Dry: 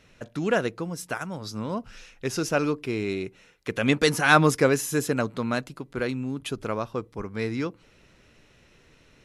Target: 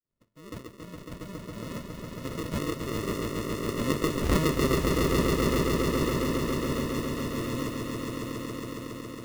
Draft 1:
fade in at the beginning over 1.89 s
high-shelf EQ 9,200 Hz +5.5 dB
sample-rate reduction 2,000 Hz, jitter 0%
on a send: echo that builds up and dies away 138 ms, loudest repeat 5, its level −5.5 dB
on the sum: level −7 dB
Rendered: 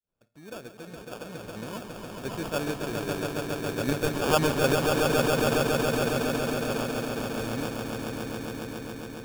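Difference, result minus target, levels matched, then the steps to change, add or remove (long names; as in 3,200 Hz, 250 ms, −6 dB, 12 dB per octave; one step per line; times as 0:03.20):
sample-rate reduction: distortion −12 dB
change: sample-rate reduction 790 Hz, jitter 0%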